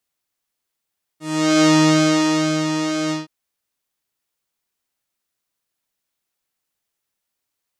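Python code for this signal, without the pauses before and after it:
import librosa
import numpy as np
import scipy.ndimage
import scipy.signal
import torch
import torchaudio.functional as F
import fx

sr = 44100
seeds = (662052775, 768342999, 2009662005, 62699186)

y = fx.sub_patch_pwm(sr, seeds[0], note=63, wave2='square', interval_st=-12, detune_cents=16, level2_db=-10, sub_db=-15.0, noise_db=-30.0, kind='lowpass', cutoff_hz=4800.0, q=1.9, env_oct=1.0, env_decay_s=0.27, env_sustain_pct=40, attack_ms=413.0, decay_s=1.03, sustain_db=-8.5, release_s=0.16, note_s=1.91, lfo_hz=2.1, width_pct=38, width_swing_pct=4)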